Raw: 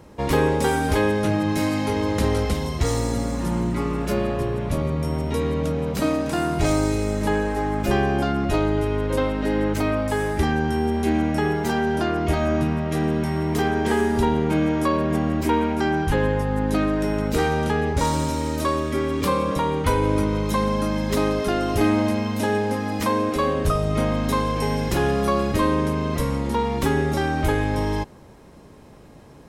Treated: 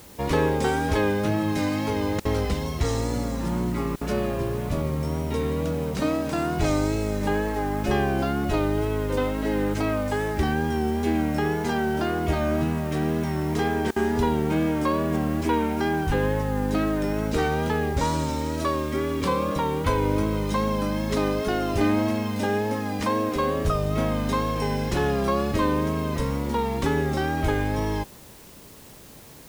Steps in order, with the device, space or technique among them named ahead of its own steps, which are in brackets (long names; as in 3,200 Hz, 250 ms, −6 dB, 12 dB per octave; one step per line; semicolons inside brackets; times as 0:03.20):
worn cassette (low-pass filter 7,800 Hz; tape wow and flutter; tape dropouts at 0:02.20/0:03.96/0:13.91, 50 ms −29 dB; white noise bed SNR 25 dB)
level −2.5 dB